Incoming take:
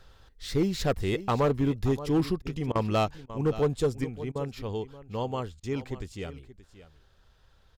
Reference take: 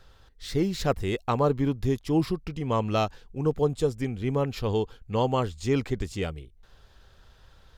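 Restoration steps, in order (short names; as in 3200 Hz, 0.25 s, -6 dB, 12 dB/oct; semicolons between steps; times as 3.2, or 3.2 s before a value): clip repair -18.5 dBFS; interpolate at 2.42/2.72/3.26/4.32/5.6, 32 ms; inverse comb 0.577 s -15.5 dB; gain 0 dB, from 4.04 s +7 dB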